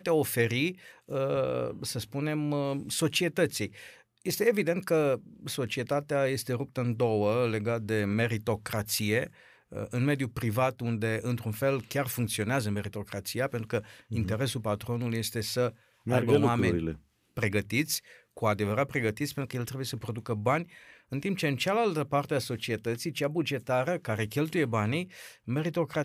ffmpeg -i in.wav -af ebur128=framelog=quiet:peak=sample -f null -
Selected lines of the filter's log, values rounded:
Integrated loudness:
  I:         -30.0 LUFS
  Threshold: -40.3 LUFS
Loudness range:
  LRA:         2.5 LU
  Threshold: -50.3 LUFS
  LRA low:   -31.6 LUFS
  LRA high:  -29.1 LUFS
Sample peak:
  Peak:      -11.1 dBFS